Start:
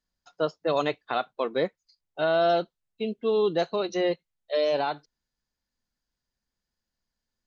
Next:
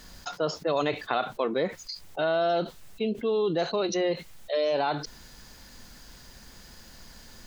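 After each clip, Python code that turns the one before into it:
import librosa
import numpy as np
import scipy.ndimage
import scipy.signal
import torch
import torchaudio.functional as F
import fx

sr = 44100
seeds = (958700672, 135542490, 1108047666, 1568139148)

y = fx.env_flatten(x, sr, amount_pct=70)
y = y * 10.0 ** (-3.5 / 20.0)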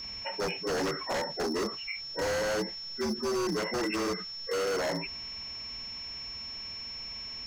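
y = fx.partial_stretch(x, sr, pct=75)
y = y + 10.0 ** (-38.0 / 20.0) * np.sin(2.0 * np.pi * 5400.0 * np.arange(len(y)) / sr)
y = 10.0 ** (-25.0 / 20.0) * (np.abs((y / 10.0 ** (-25.0 / 20.0) + 3.0) % 4.0 - 2.0) - 1.0)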